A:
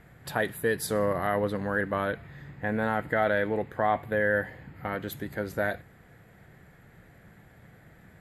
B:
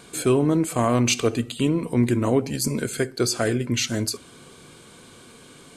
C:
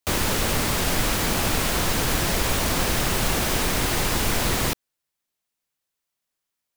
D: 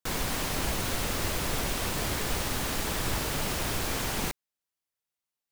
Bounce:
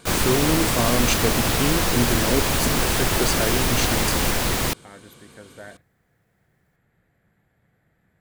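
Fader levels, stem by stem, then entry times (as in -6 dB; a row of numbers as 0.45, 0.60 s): -12.5, -2.5, +0.5, +2.5 dB; 0.00, 0.00, 0.00, 0.00 s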